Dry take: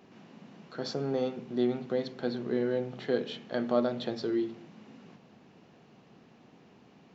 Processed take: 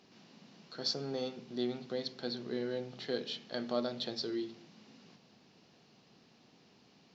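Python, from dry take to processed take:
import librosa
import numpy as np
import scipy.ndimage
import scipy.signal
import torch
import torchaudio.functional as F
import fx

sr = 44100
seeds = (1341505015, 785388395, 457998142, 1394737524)

y = fx.peak_eq(x, sr, hz=4800.0, db=15.0, octaves=1.2)
y = y * librosa.db_to_amplitude(-7.5)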